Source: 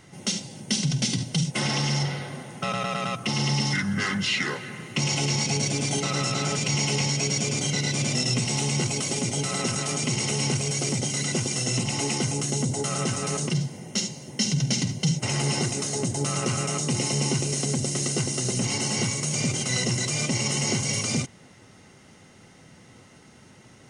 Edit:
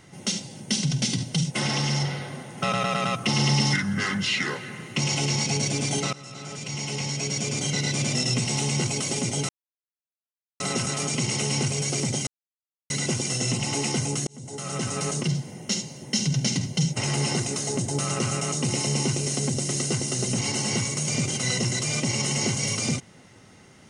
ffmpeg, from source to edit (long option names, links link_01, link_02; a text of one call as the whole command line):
ffmpeg -i in.wav -filter_complex "[0:a]asplit=7[link_01][link_02][link_03][link_04][link_05][link_06][link_07];[link_01]atrim=end=2.582[link_08];[link_02]atrim=start=2.578:end=3.762,asetpts=PTS-STARTPTS,volume=3dB[link_09];[link_03]atrim=start=3.758:end=6.13,asetpts=PTS-STARTPTS,afade=type=out:start_time=2.368:duration=0.004:curve=hsin:silence=0.1[link_10];[link_04]atrim=start=6.13:end=9.49,asetpts=PTS-STARTPTS,afade=type=in:duration=1.67:silence=0.1,afade=type=out:start_time=3.356:duration=0.004:curve=hsin,apad=pad_dur=1.11[link_11];[link_05]atrim=start=9.49:end=11.16,asetpts=PTS-STARTPTS,afade=type=in:duration=0.004:curve=hsin,afade=type=out:start_time=1.666:duration=0.004:curve=hsin,apad=pad_dur=0.63[link_12];[link_06]atrim=start=11.16:end=12.53,asetpts=PTS-STARTPTS,afade=type=in:duration=0.004:curve=hsin,afade=type=out:start_time=1.366:duration=0.004:curve=hsin[link_13];[link_07]atrim=start=12.53,asetpts=PTS-STARTPTS,afade=type=in:duration=0.7[link_14];[link_08][link_09]acrossfade=duration=0.004:curve1=hsin:curve2=hsin[link_15];[link_10][link_11][link_12][link_13][link_14]concat=n=5:v=0:a=1[link_16];[link_15][link_16]acrossfade=duration=0.004:curve1=hsin:curve2=hsin" out.wav